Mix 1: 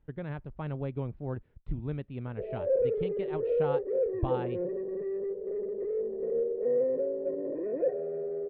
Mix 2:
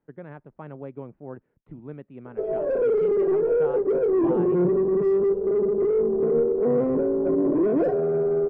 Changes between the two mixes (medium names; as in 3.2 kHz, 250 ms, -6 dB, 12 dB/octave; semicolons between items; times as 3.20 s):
speech: add three-band isolator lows -23 dB, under 160 Hz, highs -21 dB, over 2.3 kHz; background: remove cascade formant filter e